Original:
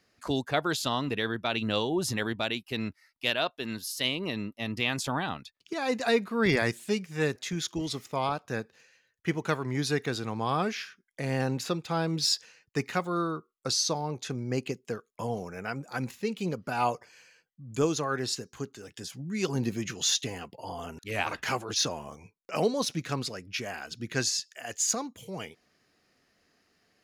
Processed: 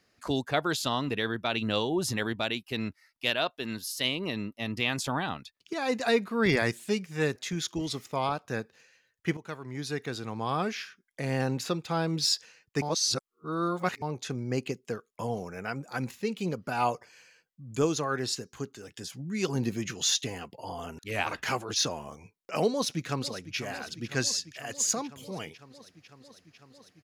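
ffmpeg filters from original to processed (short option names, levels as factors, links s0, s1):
-filter_complex "[0:a]asplit=2[s0][s1];[s1]afade=t=in:st=22.7:d=0.01,afade=t=out:st=23.57:d=0.01,aecho=0:1:500|1000|1500|2000|2500|3000|3500|4000|4500|5000|5500|6000:0.199526|0.159621|0.127697|0.102157|0.0817259|0.0653808|0.0523046|0.0418437|0.0334749|0.02678|0.021424|0.0171392[s2];[s0][s2]amix=inputs=2:normalize=0,asplit=4[s3][s4][s5][s6];[s3]atrim=end=9.37,asetpts=PTS-STARTPTS,afade=t=out:st=9.366:d=0.004:c=hsin:silence=0.211349[s7];[s4]atrim=start=9.37:end=12.822,asetpts=PTS-STARTPTS,afade=t=in:d=2.01:c=qsin:silence=0.211349[s8];[s5]atrim=start=12.818:end=14.022,asetpts=PTS-STARTPTS,areverse[s9];[s6]atrim=start=14.018[s10];[s7][s8]concat=n=2:v=0:a=1[s11];[s11][s9]acrossfade=d=0.004:c1=hsin:c2=hsin[s12];[s12][s10]acrossfade=d=0.004:c1=hsin:c2=hsin"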